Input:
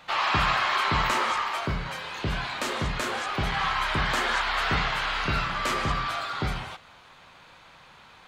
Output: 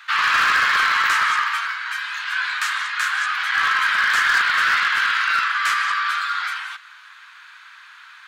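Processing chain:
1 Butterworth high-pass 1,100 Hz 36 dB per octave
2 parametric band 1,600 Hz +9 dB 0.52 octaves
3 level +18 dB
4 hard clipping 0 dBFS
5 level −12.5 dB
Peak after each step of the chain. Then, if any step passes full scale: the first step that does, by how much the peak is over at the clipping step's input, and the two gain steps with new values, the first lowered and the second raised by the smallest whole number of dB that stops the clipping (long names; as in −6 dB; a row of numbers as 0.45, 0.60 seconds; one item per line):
−14.0, −10.5, +7.5, 0.0, −12.5 dBFS
step 3, 7.5 dB
step 3 +10 dB, step 5 −4.5 dB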